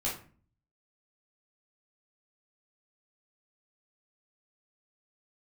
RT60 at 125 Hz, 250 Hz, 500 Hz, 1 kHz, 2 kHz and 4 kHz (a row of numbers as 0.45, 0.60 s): 0.80, 0.65, 0.45, 0.40, 0.40, 0.25 s